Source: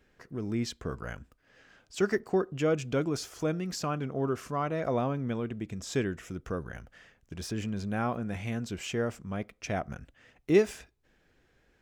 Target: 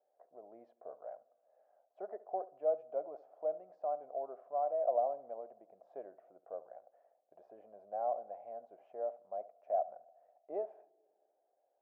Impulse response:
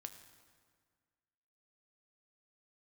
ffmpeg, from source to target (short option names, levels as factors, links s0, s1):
-filter_complex "[0:a]asuperpass=centerf=660:order=4:qfactor=3.6,asplit=2[s0][s1];[1:a]atrim=start_sample=2205,lowpass=1600,adelay=71[s2];[s1][s2]afir=irnorm=-1:irlink=0,volume=0.282[s3];[s0][s3]amix=inputs=2:normalize=0,volume=1.41"